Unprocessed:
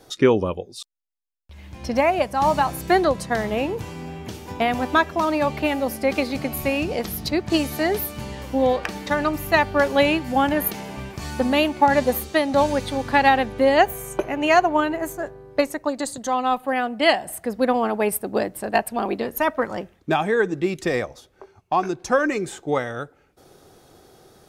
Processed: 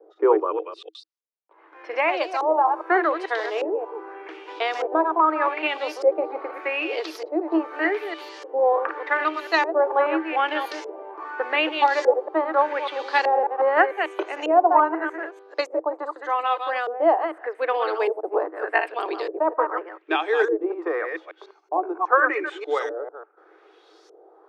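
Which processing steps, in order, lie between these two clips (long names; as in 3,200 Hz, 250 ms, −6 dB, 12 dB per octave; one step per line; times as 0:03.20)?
delay that plays each chunk backwards 148 ms, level −7 dB
auto-filter low-pass saw up 0.83 Hz 500–6,100 Hz
Chebyshev high-pass with heavy ripple 310 Hz, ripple 6 dB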